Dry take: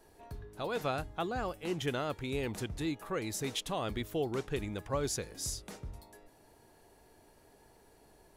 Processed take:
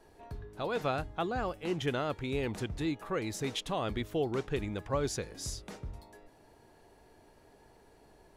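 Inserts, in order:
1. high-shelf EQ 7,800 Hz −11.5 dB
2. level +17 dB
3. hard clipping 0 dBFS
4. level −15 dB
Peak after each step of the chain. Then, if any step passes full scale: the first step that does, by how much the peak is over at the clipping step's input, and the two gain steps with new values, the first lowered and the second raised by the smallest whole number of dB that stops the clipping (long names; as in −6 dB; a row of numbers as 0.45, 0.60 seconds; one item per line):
−21.5, −4.5, −4.5, −19.5 dBFS
no step passes full scale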